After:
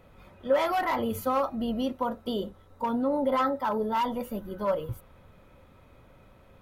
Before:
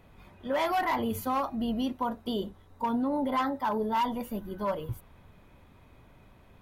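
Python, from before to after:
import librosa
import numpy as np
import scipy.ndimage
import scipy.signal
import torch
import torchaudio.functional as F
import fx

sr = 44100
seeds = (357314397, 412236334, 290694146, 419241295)

y = fx.small_body(x, sr, hz=(530.0, 1300.0), ring_ms=45, db=10)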